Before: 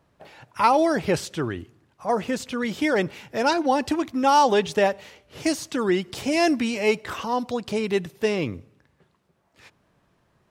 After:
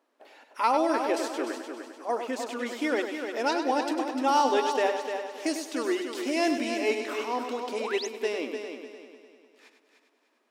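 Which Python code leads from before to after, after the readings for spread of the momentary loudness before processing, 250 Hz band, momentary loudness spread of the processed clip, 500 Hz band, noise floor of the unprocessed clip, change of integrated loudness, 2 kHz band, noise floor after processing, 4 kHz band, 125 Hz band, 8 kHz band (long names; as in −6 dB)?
10 LU, −5.5 dB, 11 LU, −4.5 dB, −67 dBFS, −5.0 dB, −4.5 dB, −70 dBFS, −4.0 dB, below −25 dB, −4.0 dB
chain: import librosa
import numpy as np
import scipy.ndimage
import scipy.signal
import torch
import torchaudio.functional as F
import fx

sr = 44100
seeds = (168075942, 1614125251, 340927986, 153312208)

y = fx.brickwall_highpass(x, sr, low_hz=230.0)
y = fx.echo_heads(y, sr, ms=100, heads='first and third', feedback_pct=52, wet_db=-8)
y = fx.spec_paint(y, sr, seeds[0], shape='rise', start_s=7.78, length_s=0.29, low_hz=410.0, high_hz=7200.0, level_db=-30.0)
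y = F.gain(torch.from_numpy(y), -6.0).numpy()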